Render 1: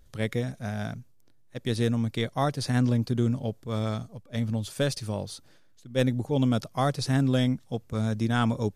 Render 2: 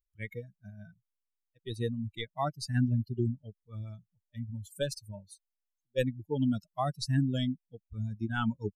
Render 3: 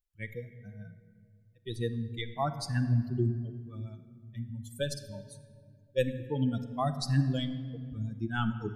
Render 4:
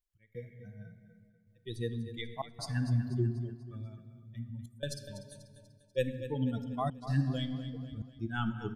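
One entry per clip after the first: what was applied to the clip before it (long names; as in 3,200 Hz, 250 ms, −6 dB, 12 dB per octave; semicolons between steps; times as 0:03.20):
spectral dynamics exaggerated over time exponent 3
rectangular room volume 3,200 cubic metres, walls mixed, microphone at 0.8 metres
gate pattern "xx..xxxxxxxxx" 174 BPM −24 dB; on a send: repeating echo 244 ms, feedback 46%, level −12.5 dB; on the sum: level −3 dB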